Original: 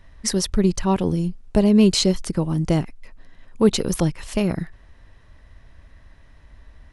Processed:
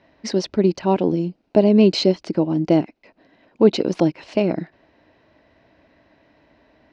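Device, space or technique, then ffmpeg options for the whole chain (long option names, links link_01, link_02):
kitchen radio: -af "highpass=230,equalizer=frequency=310:width_type=q:width=4:gain=7,equalizer=frequency=640:width_type=q:width=4:gain=5,equalizer=frequency=1200:width_type=q:width=4:gain=-8,equalizer=frequency=1800:width_type=q:width=4:gain=-6,equalizer=frequency=3400:width_type=q:width=4:gain=-7,lowpass=frequency=4400:width=0.5412,lowpass=frequency=4400:width=1.3066,volume=3dB"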